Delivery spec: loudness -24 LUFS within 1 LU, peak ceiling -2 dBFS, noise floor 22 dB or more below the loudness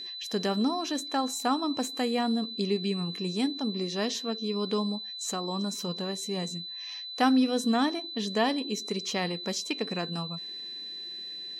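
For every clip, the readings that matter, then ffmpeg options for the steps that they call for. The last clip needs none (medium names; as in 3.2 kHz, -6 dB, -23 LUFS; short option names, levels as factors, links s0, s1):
steady tone 4 kHz; tone level -37 dBFS; loudness -30.0 LUFS; peak level -10.5 dBFS; loudness target -24.0 LUFS
-> -af "bandreject=f=4000:w=30"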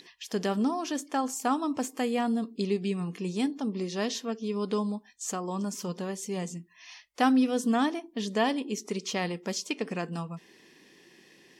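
steady tone not found; loudness -30.5 LUFS; peak level -11.0 dBFS; loudness target -24.0 LUFS
-> -af "volume=2.11"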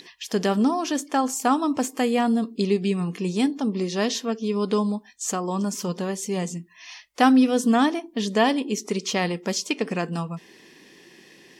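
loudness -24.0 LUFS; peak level -4.5 dBFS; noise floor -52 dBFS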